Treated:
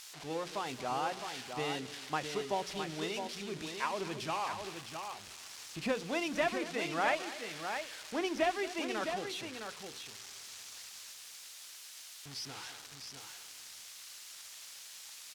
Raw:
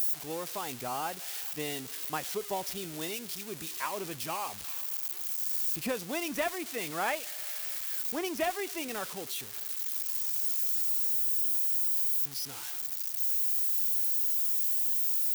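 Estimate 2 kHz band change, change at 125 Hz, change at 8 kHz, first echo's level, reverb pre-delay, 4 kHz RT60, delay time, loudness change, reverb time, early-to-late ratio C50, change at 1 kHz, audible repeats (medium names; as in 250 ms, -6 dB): +1.0 dB, +0.5 dB, -8.5 dB, -16.0 dB, no reverb, no reverb, 226 ms, -9.0 dB, no reverb, no reverb, +1.0 dB, 2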